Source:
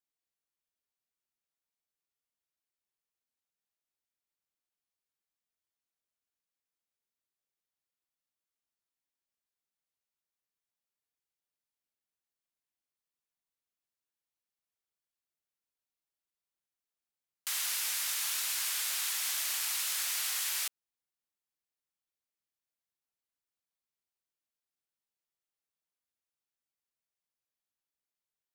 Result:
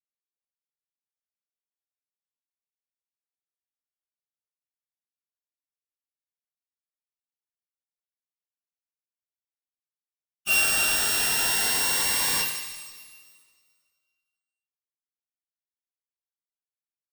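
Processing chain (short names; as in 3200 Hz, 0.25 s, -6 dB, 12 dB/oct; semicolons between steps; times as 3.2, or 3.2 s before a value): sample sorter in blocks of 16 samples; low shelf 99 Hz -11.5 dB; sample leveller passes 5; on a send: thinning echo 0.13 s, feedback 73%, high-pass 820 Hz, level -10.5 dB; on the sum: two-slope reverb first 0.78 s, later 3.3 s, from -19 dB, DRR -4 dB; spectral noise reduction 15 dB; plain phase-vocoder stretch 0.6×; in parallel at -9.5 dB: wrapped overs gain 28.5 dB; on the sum: high shelf 12000 Hz +5 dB; cascading phaser rising 0.22 Hz; gain +3.5 dB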